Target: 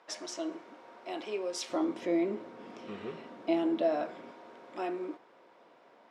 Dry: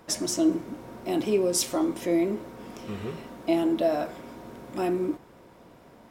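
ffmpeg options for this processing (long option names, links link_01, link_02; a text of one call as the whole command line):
ffmpeg -i in.wav -af "asetnsamples=nb_out_samples=441:pad=0,asendcmd='1.7 highpass f 240;4.31 highpass f 460',highpass=610,lowpass=4100,volume=-4dB" out.wav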